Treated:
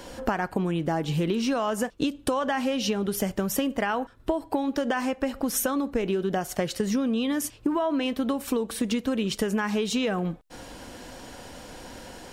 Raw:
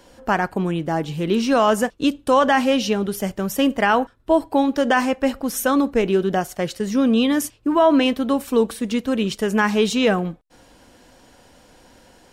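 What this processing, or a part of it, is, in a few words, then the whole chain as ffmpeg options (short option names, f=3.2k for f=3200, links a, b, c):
serial compression, leveller first: -af "acompressor=threshold=-20dB:ratio=2,acompressor=threshold=-31dB:ratio=10,volume=8dB"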